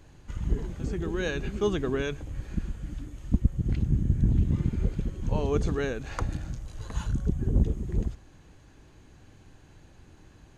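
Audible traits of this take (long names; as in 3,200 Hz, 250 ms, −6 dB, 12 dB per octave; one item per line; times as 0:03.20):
background noise floor −55 dBFS
spectral slope −7.5 dB per octave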